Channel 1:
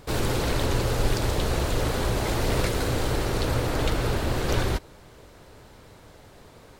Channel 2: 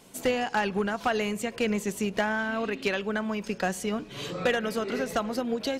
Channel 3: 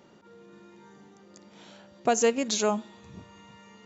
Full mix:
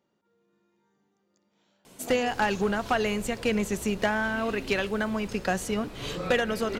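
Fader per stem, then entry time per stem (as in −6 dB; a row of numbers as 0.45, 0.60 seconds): −18.5, +1.0, −19.0 decibels; 2.20, 1.85, 0.00 seconds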